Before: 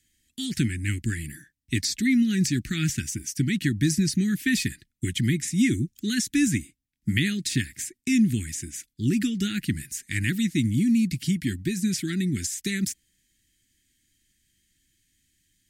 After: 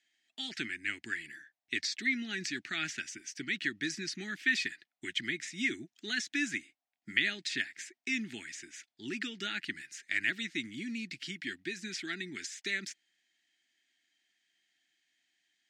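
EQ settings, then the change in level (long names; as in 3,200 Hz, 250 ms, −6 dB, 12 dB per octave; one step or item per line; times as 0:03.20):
high-pass with resonance 710 Hz, resonance Q 8.1
high-frequency loss of the air 160 metres
0.0 dB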